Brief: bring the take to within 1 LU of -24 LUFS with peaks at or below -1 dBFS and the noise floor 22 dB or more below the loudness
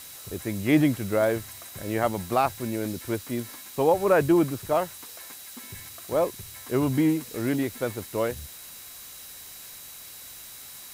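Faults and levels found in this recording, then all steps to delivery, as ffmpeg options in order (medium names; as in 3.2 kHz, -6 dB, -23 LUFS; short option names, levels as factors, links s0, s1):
steady tone 3.9 kHz; tone level -53 dBFS; noise floor -44 dBFS; noise floor target -48 dBFS; loudness -26.0 LUFS; peak level -8.0 dBFS; loudness target -24.0 LUFS
-> -af "bandreject=f=3900:w=30"
-af "afftdn=nr=6:nf=-44"
-af "volume=1.26"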